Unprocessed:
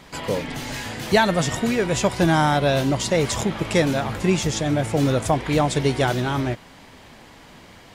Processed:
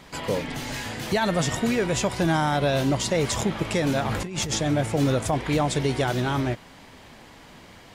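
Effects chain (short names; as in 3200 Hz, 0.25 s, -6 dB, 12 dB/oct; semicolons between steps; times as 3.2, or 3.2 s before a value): 4.05–4.58 negative-ratio compressor -27 dBFS, ratio -1; limiter -12.5 dBFS, peak gain reduction 8 dB; gain -1.5 dB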